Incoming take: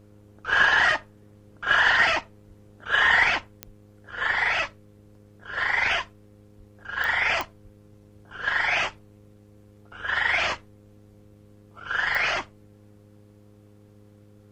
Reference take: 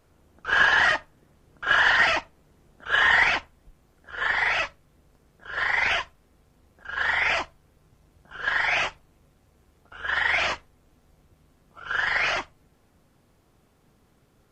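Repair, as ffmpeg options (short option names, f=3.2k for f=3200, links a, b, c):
-filter_complex "[0:a]adeclick=t=4,bandreject=f=103.6:t=h:w=4,bandreject=f=207.2:t=h:w=4,bandreject=f=310.8:t=h:w=4,bandreject=f=414.4:t=h:w=4,bandreject=f=518:t=h:w=4,asplit=3[a][b][c];[a]afade=t=out:st=2.47:d=0.02[d];[b]highpass=f=140:w=0.5412,highpass=f=140:w=1.3066,afade=t=in:st=2.47:d=0.02,afade=t=out:st=2.59:d=0.02[e];[c]afade=t=in:st=2.59:d=0.02[f];[d][e][f]amix=inputs=3:normalize=0,asplit=3[g][h][i];[g]afade=t=out:st=6.57:d=0.02[j];[h]highpass=f=140:w=0.5412,highpass=f=140:w=1.3066,afade=t=in:st=6.57:d=0.02,afade=t=out:st=6.69:d=0.02[k];[i]afade=t=in:st=6.69:d=0.02[l];[j][k][l]amix=inputs=3:normalize=0,asplit=3[m][n][o];[m]afade=t=out:st=7.63:d=0.02[p];[n]highpass=f=140:w=0.5412,highpass=f=140:w=1.3066,afade=t=in:st=7.63:d=0.02,afade=t=out:st=7.75:d=0.02[q];[o]afade=t=in:st=7.75:d=0.02[r];[p][q][r]amix=inputs=3:normalize=0"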